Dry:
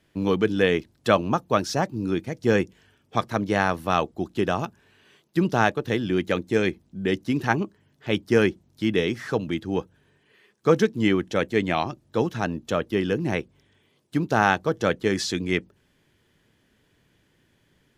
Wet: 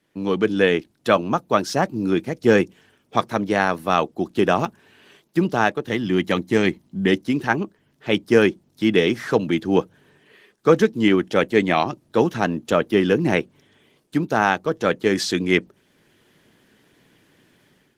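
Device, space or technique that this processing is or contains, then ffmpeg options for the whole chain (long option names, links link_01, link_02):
video call: -filter_complex "[0:a]asettb=1/sr,asplit=3[link_01][link_02][link_03];[link_01]atrim=end=5.914[link_04];[link_02]atrim=start=5.91:end=7.11,asetpts=PTS-STARTPTS,afade=type=in:duration=0.004:curve=qsin,afade=type=out:start_time=1.196:duration=0.004:curve=qsin,aecho=1:1:1:0.38,atrim=end_sample=52920[link_05];[link_03]atrim=start=7.106[link_06];[link_04][link_05]acrossfade=duration=0.004:curve1=hsin:curve2=qsin[link_07];[link_07][link_06]acrossfade=duration=0.004:curve1=qsin:curve2=hsin,highpass=150,dynaudnorm=framelen=140:gausssize=5:maxgain=11dB,volume=-1dB" -ar 48000 -c:a libopus -b:a 20k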